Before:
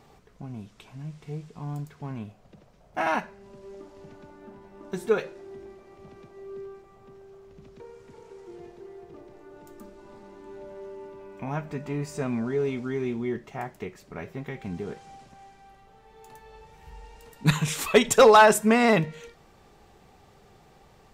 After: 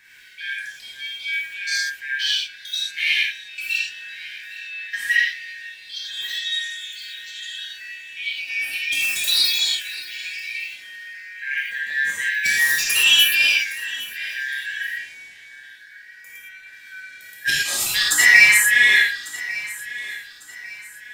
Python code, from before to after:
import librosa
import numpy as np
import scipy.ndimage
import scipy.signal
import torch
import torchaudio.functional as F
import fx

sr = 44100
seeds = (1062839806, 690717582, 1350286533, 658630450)

p1 = fx.band_shuffle(x, sr, order='4123')
p2 = fx.high_shelf(p1, sr, hz=9800.0, db=11.0)
p3 = np.clip(p2, -10.0 ** (-18.5 / 20.0), 10.0 ** (-18.5 / 20.0))
p4 = p2 + (p3 * 10.0 ** (-9.0 / 20.0))
p5 = fx.filter_lfo_notch(p4, sr, shape='saw_up', hz=0.42, low_hz=580.0, high_hz=5600.0, q=1.9)
p6 = p5 + fx.echo_feedback(p5, sr, ms=1149, feedback_pct=37, wet_db=-17.0, dry=0)
p7 = fx.echo_pitch(p6, sr, ms=92, semitones=6, count=2, db_per_echo=-3.0)
p8 = fx.rev_gated(p7, sr, seeds[0], gate_ms=140, shape='flat', drr_db=-5.0)
y = p8 * 10.0 ** (-2.5 / 20.0)